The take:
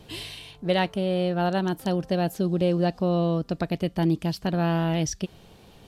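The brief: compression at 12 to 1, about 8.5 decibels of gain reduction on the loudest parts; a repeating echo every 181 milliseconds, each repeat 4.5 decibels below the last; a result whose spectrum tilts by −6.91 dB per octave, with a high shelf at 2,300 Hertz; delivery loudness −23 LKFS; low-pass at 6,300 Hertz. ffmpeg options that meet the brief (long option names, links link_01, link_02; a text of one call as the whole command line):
ffmpeg -i in.wav -af "lowpass=6300,highshelf=frequency=2300:gain=-8.5,acompressor=threshold=-27dB:ratio=12,aecho=1:1:181|362|543|724|905|1086|1267|1448|1629:0.596|0.357|0.214|0.129|0.0772|0.0463|0.0278|0.0167|0.01,volume=8dB" out.wav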